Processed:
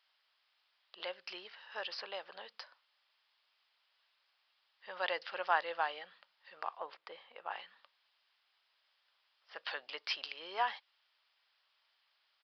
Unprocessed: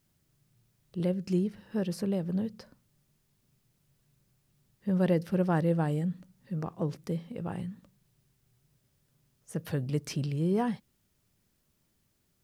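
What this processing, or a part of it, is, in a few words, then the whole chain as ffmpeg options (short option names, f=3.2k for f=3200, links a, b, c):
musical greeting card: -filter_complex "[0:a]aresample=11025,aresample=44100,highpass=f=830:w=0.5412,highpass=f=830:w=1.3066,equalizer=f=3.1k:t=o:w=0.43:g=4,asettb=1/sr,asplit=3[a][b][c];[a]atrim=end=6.784[d];[b]atrim=start=6.78:end=7.51,asetpts=PTS-STARTPTS,afade=t=in:d=0.004:c=qsin,afade=t=out:st=0.726:d=0.004:c=qsin,lowpass=f=1.6k:p=1[e];[c]atrim=start=7.506[f];[d][e]acrossfade=d=0.004:c1=hsin:c2=qsin[g];[g][f]acrossfade=d=0.004:c1=qsin:c2=hsin,volume=5.5dB"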